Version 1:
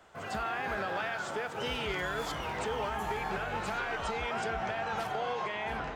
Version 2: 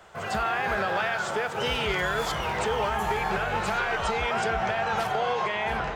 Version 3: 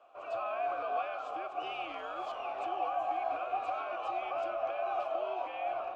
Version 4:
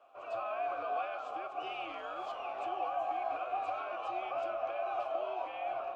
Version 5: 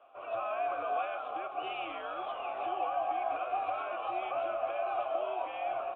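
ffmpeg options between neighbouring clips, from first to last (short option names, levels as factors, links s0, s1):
-af "equalizer=f=280:t=o:w=0.22:g=-13.5,volume=2.37"
-filter_complex "[0:a]afreqshift=-100,asplit=3[s0][s1][s2];[s0]bandpass=f=730:t=q:w=8,volume=1[s3];[s1]bandpass=f=1090:t=q:w=8,volume=0.501[s4];[s2]bandpass=f=2440:t=q:w=8,volume=0.355[s5];[s3][s4][s5]amix=inputs=3:normalize=0"
-af "flanger=delay=7.1:depth=3.4:regen=76:speed=0.68:shape=triangular,volume=1.41"
-af "aresample=8000,aresample=44100,volume=1.33"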